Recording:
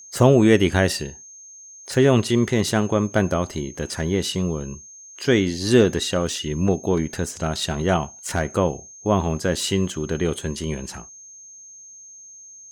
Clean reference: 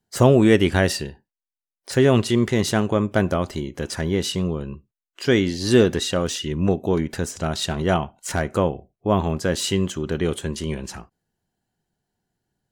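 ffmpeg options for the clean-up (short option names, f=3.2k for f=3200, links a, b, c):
-af "bandreject=f=6.4k:w=30"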